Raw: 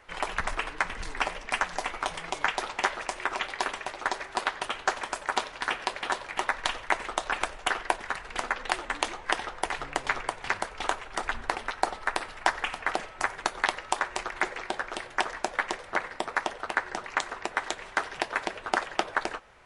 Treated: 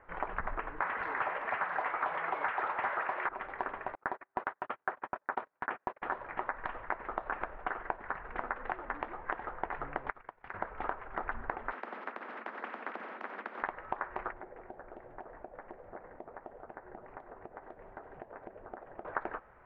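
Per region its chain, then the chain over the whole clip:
0:00.82–0:03.29: mid-hump overdrive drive 25 dB, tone 7,600 Hz, clips at −8.5 dBFS + high-pass filter 47 Hz + low-shelf EQ 320 Hz −8 dB
0:03.95–0:06.02: high-pass filter 140 Hz + noise gate −35 dBFS, range −35 dB
0:10.10–0:10.54: first-order pre-emphasis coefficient 0.8 + downward compressor 3 to 1, threshold −38 dBFS + transient designer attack +5 dB, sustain −11 dB
0:11.72–0:13.63: Butterworth high-pass 210 Hz 72 dB per octave + spectral tilt +2.5 dB per octave + every bin compressed towards the loudest bin 4 to 1
0:14.32–0:19.05: flat-topped bell 2,200 Hz −11 dB 2.6 octaves + downward compressor 2.5 to 1, threshold −45 dBFS
whole clip: downward compressor, threshold −28 dBFS; low-pass filter 1,700 Hz 24 dB per octave; level −1.5 dB

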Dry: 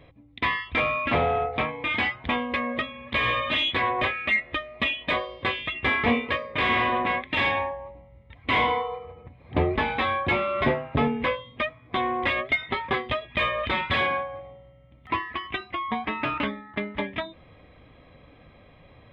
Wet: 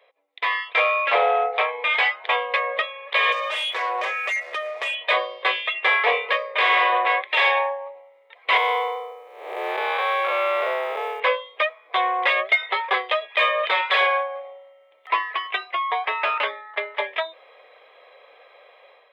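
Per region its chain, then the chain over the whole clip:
0:03.32–0:04.95: leveller curve on the samples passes 2 + high-shelf EQ 3,800 Hz −10 dB + downward compressor 4 to 1, threshold −30 dBFS
0:08.57–0:11.20: spectrum smeared in time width 299 ms + log-companded quantiser 8 bits
whole clip: Butterworth high-pass 450 Hz 48 dB per octave; automatic gain control gain up to 9 dB; level −3 dB

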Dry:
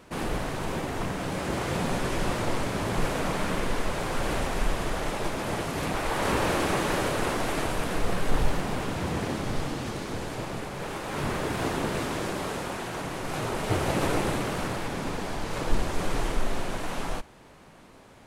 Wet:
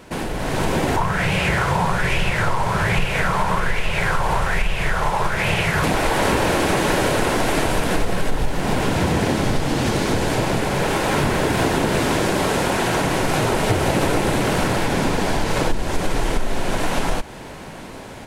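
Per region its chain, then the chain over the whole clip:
0:00.96–0:05.84: drawn EQ curve 170 Hz 0 dB, 270 Hz −16 dB, 400 Hz −6 dB + auto-filter bell 1.2 Hz 930–2,700 Hz +15 dB
whole clip: downward compressor, threshold −32 dBFS; notch filter 1,200 Hz, Q 9.8; automatic gain control gain up to 8 dB; level +8.5 dB

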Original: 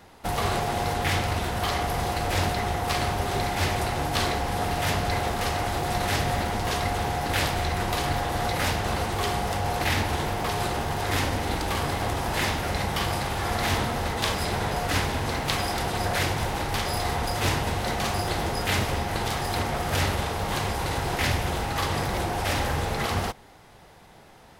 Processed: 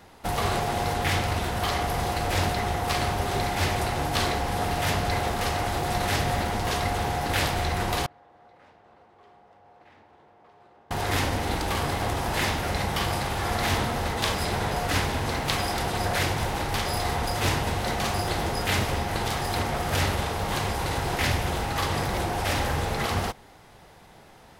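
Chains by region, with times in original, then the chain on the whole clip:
0:08.06–0:10.91: Bessel low-pass filter 500 Hz + first difference
whole clip: no processing

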